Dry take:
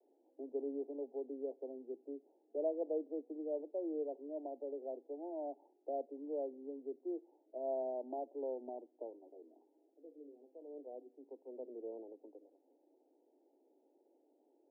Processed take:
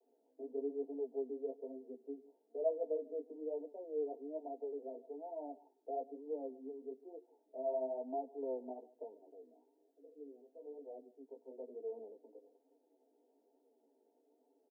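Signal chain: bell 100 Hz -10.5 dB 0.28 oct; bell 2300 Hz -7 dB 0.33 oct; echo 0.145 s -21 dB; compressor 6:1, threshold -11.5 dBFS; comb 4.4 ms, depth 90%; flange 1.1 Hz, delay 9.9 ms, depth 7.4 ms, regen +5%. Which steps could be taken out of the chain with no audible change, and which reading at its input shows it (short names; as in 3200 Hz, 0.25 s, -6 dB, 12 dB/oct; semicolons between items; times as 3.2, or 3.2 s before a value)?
bell 100 Hz: input band starts at 230 Hz; bell 2300 Hz: input band ends at 960 Hz; compressor, threshold -11.5 dBFS: input peak -25.5 dBFS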